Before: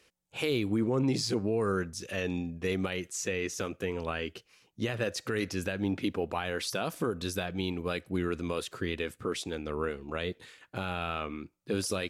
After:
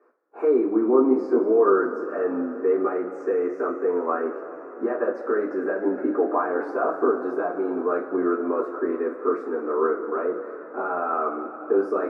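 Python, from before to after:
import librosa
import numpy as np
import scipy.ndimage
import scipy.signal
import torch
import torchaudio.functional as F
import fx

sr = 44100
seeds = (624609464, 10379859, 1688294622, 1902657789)

y = scipy.signal.sosfilt(scipy.signal.ellip(3, 1.0, 40, [290.0, 1400.0], 'bandpass', fs=sr, output='sos'), x)
y = fx.rev_double_slope(y, sr, seeds[0], early_s=0.26, late_s=4.7, knee_db=-20, drr_db=-9.0)
y = y * librosa.db_to_amplitude(2.0)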